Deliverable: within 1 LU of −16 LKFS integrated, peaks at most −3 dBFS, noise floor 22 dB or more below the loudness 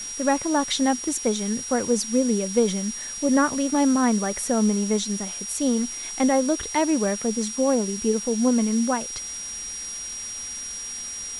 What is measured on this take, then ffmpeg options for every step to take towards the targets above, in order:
interfering tone 5,700 Hz; level of the tone −32 dBFS; background noise floor −34 dBFS; target noise floor −46 dBFS; integrated loudness −23.5 LKFS; sample peak −8.5 dBFS; target loudness −16.0 LKFS
→ -af "bandreject=frequency=5700:width=30"
-af "afftdn=noise_reduction=12:noise_floor=-34"
-af "volume=7.5dB,alimiter=limit=-3dB:level=0:latency=1"

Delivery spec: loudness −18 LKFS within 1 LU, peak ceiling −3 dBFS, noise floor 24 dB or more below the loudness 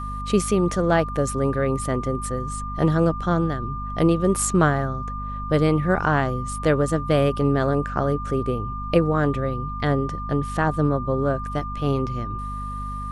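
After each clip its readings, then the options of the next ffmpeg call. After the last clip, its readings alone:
mains hum 50 Hz; hum harmonics up to 250 Hz; level of the hum −30 dBFS; interfering tone 1,200 Hz; level of the tone −31 dBFS; integrated loudness −23.0 LKFS; sample peak −5.5 dBFS; target loudness −18.0 LKFS
→ -af "bandreject=frequency=50:width_type=h:width=4,bandreject=frequency=100:width_type=h:width=4,bandreject=frequency=150:width_type=h:width=4,bandreject=frequency=200:width_type=h:width=4,bandreject=frequency=250:width_type=h:width=4"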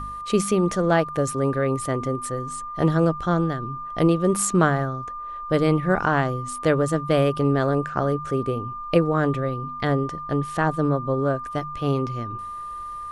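mains hum none found; interfering tone 1,200 Hz; level of the tone −31 dBFS
→ -af "bandreject=frequency=1200:width=30"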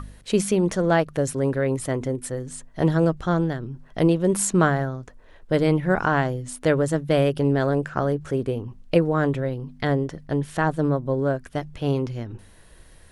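interfering tone none found; integrated loudness −23.5 LKFS; sample peak −5.5 dBFS; target loudness −18.0 LKFS
→ -af "volume=5.5dB,alimiter=limit=-3dB:level=0:latency=1"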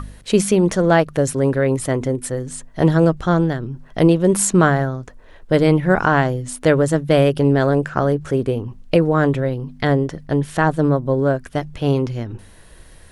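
integrated loudness −18.0 LKFS; sample peak −3.0 dBFS; background noise floor −44 dBFS

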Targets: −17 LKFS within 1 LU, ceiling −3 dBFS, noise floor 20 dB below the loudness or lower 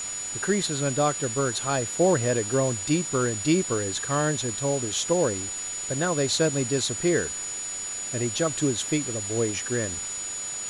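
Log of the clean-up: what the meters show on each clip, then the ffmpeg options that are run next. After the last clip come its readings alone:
interfering tone 6,900 Hz; level of the tone −31 dBFS; background noise floor −33 dBFS; target noise floor −46 dBFS; integrated loudness −25.5 LKFS; sample peak −10.0 dBFS; target loudness −17.0 LKFS
→ -af "bandreject=frequency=6900:width=30"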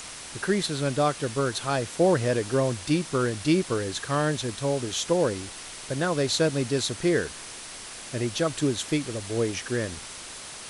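interfering tone none found; background noise floor −41 dBFS; target noise floor −47 dBFS
→ -af "afftdn=noise_reduction=6:noise_floor=-41"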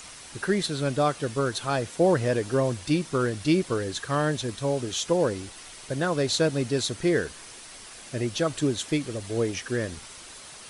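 background noise floor −45 dBFS; target noise floor −47 dBFS
→ -af "afftdn=noise_reduction=6:noise_floor=-45"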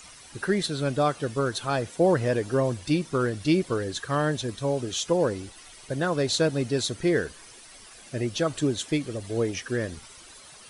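background noise floor −49 dBFS; integrated loudness −26.5 LKFS; sample peak −10.5 dBFS; target loudness −17.0 LKFS
→ -af "volume=9.5dB,alimiter=limit=-3dB:level=0:latency=1"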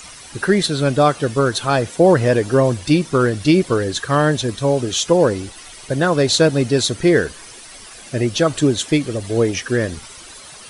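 integrated loudness −17.5 LKFS; sample peak −3.0 dBFS; background noise floor −39 dBFS

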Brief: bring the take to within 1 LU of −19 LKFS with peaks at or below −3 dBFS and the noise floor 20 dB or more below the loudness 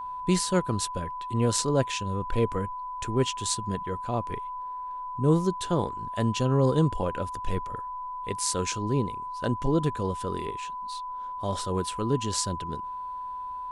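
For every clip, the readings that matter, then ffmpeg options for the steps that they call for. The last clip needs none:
interfering tone 1,000 Hz; level of the tone −33 dBFS; integrated loudness −29.0 LKFS; sample peak −8.5 dBFS; target loudness −19.0 LKFS
→ -af "bandreject=frequency=1000:width=30"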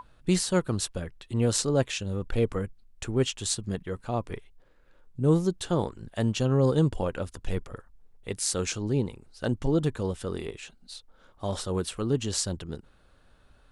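interfering tone none found; integrated loudness −28.5 LKFS; sample peak −8.5 dBFS; target loudness −19.0 LKFS
→ -af "volume=9.5dB,alimiter=limit=-3dB:level=0:latency=1"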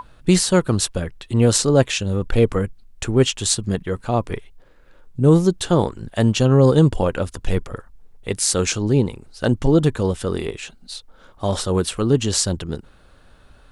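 integrated loudness −19.5 LKFS; sample peak −3.0 dBFS; background noise floor −50 dBFS

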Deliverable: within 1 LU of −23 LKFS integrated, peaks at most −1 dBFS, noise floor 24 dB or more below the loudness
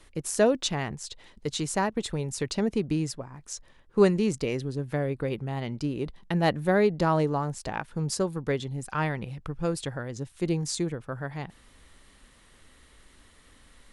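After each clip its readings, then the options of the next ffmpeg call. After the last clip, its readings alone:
integrated loudness −28.5 LKFS; sample peak −8.0 dBFS; target loudness −23.0 LKFS
→ -af "volume=5.5dB"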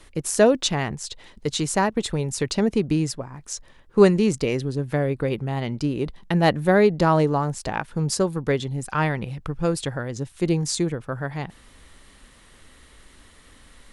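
integrated loudness −23.0 LKFS; sample peak −2.5 dBFS; background noise floor −52 dBFS

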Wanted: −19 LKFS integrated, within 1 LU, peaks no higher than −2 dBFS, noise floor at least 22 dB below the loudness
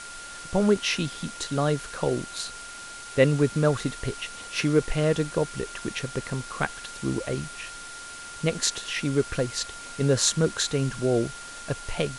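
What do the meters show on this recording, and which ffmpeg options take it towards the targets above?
interfering tone 1,400 Hz; level of the tone −41 dBFS; background noise floor −41 dBFS; target noise floor −49 dBFS; integrated loudness −27.0 LKFS; sample peak −5.0 dBFS; target loudness −19.0 LKFS
→ -af "bandreject=frequency=1400:width=30"
-af "afftdn=noise_reduction=8:noise_floor=-41"
-af "volume=8dB,alimiter=limit=-2dB:level=0:latency=1"

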